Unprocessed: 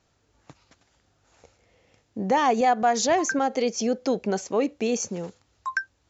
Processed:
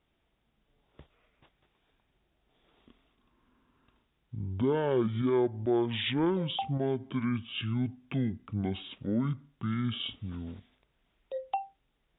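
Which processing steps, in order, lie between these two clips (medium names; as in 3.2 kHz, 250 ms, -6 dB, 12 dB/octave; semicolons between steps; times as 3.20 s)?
speed mistake 15 ips tape played at 7.5 ips; trim -7 dB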